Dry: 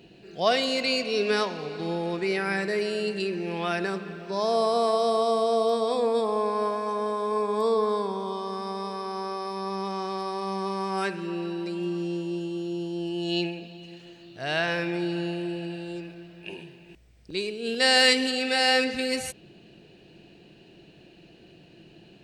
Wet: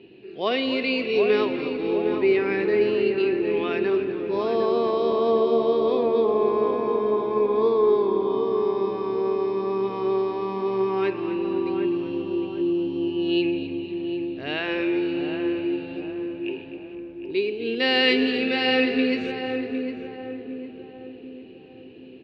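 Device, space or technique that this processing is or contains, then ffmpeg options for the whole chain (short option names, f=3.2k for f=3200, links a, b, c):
frequency-shifting delay pedal into a guitar cabinet: -filter_complex "[0:a]asplit=5[a][b][c][d][e];[b]adelay=253,afreqshift=-74,volume=-13dB[f];[c]adelay=506,afreqshift=-148,volume=-20.1dB[g];[d]adelay=759,afreqshift=-222,volume=-27.3dB[h];[e]adelay=1012,afreqshift=-296,volume=-34.4dB[i];[a][f][g][h][i]amix=inputs=5:normalize=0,highpass=81,equalizer=f=170:t=q:w=4:g=-9,equalizer=f=260:t=q:w=4:g=6,equalizer=f=390:t=q:w=4:g=9,equalizer=f=680:t=q:w=4:g=-7,equalizer=f=1.5k:t=q:w=4:g=-6,equalizer=f=2.5k:t=q:w=4:g=4,lowpass=f=3.5k:w=0.5412,lowpass=f=3.5k:w=1.3066,asettb=1/sr,asplit=3[j][k][l];[j]atrim=end=6.034[m];[k]atrim=start=6.03:end=6.75,asetpts=PTS-STARTPTS,afade=t=in:d=0.004:c=qsin,afade=t=out:st=0.716:d=0.004:c=qsin,lowpass=6.7k[n];[l]atrim=start=6.746[o];[m][n]acrossfade=d=0.004:c1=hsin:c2=qsin[p];[p][o]acrossfade=d=0.004:c1=qsin:c2=hsin,asplit=2[q][r];[r]adelay=757,lowpass=f=1.1k:p=1,volume=-5dB,asplit=2[s][t];[t]adelay=757,lowpass=f=1.1k:p=1,volume=0.51,asplit=2[u][v];[v]adelay=757,lowpass=f=1.1k:p=1,volume=0.51,asplit=2[w][x];[x]adelay=757,lowpass=f=1.1k:p=1,volume=0.51,asplit=2[y][z];[z]adelay=757,lowpass=f=1.1k:p=1,volume=0.51,asplit=2[aa][ab];[ab]adelay=757,lowpass=f=1.1k:p=1,volume=0.51[ac];[q][s][u][w][y][aa][ac]amix=inputs=7:normalize=0"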